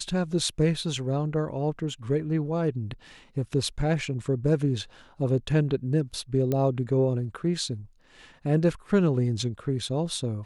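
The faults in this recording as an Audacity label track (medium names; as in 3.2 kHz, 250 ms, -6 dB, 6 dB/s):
6.520000	6.520000	pop -15 dBFS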